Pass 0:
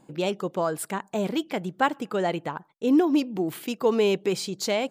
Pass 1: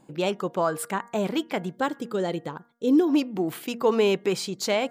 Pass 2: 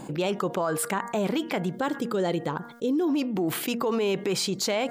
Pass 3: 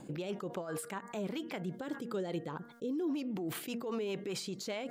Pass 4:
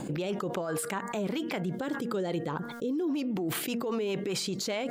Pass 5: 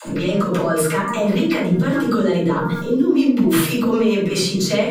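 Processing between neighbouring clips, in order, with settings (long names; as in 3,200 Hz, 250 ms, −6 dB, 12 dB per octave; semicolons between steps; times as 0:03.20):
hum removal 235.9 Hz, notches 9; dynamic equaliser 1,300 Hz, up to +4 dB, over −42 dBFS, Q 0.9; gain on a spectral selection 0:01.76–0:03.08, 580–3,100 Hz −8 dB
brickwall limiter −20 dBFS, peak gain reduction 9 dB; envelope flattener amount 50%
brickwall limiter −21 dBFS, peak gain reduction 7.5 dB; rotating-speaker cabinet horn 5 Hz; level −7 dB
envelope flattener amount 50%; level +3.5 dB
Butterworth band-reject 750 Hz, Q 4.5; all-pass dispersion lows, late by 72 ms, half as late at 340 Hz; convolution reverb RT60 0.50 s, pre-delay 5 ms, DRR −7.5 dB; level +3 dB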